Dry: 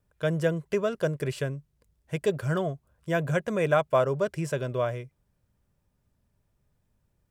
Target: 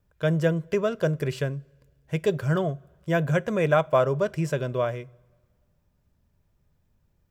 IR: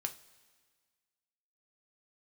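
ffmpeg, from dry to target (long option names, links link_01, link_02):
-filter_complex "[0:a]equalizer=frequency=9300:width_type=o:width=0.36:gain=-8,asplit=2[link_01][link_02];[1:a]atrim=start_sample=2205,lowshelf=frequency=180:gain=10.5[link_03];[link_02][link_03]afir=irnorm=-1:irlink=0,volume=-11dB[link_04];[link_01][link_04]amix=inputs=2:normalize=0"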